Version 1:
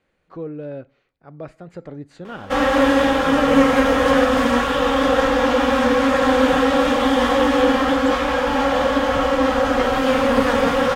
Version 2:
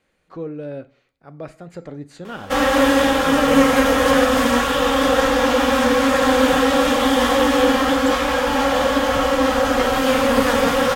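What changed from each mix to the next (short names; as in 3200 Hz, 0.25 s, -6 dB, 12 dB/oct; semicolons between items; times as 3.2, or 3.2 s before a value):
speech: send +7.0 dB; master: remove LPF 3200 Hz 6 dB/oct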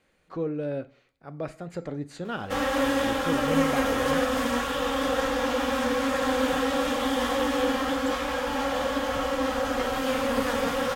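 background -9.5 dB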